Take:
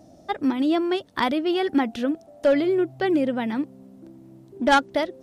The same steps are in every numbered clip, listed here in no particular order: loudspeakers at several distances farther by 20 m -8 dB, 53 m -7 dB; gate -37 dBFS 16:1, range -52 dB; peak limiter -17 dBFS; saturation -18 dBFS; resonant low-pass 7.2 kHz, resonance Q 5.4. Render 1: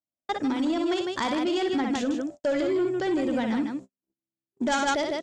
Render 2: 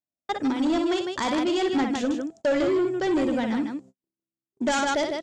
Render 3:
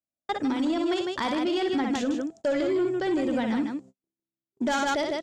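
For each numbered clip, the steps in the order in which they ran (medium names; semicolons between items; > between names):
loudspeakers at several distances > peak limiter > saturation > resonant low-pass > gate; gate > loudspeakers at several distances > saturation > resonant low-pass > peak limiter; resonant low-pass > gate > loudspeakers at several distances > peak limiter > saturation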